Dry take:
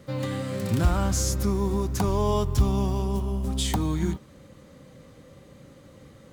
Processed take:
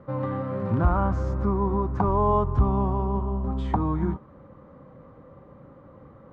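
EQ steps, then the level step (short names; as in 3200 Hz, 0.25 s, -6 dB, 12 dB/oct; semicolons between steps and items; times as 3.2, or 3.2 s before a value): synth low-pass 1100 Hz, resonance Q 2.3; 0.0 dB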